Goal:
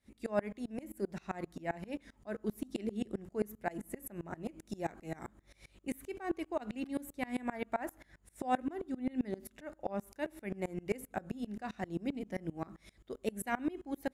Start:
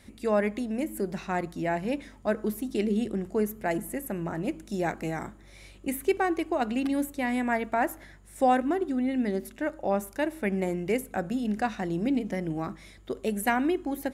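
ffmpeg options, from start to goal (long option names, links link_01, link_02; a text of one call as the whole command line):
ffmpeg -i in.wav -af "aeval=exprs='val(0)*pow(10,-26*if(lt(mod(-7.6*n/s,1),2*abs(-7.6)/1000),1-mod(-7.6*n/s,1)/(2*abs(-7.6)/1000),(mod(-7.6*n/s,1)-2*abs(-7.6)/1000)/(1-2*abs(-7.6)/1000))/20)':channel_layout=same,volume=-2.5dB" out.wav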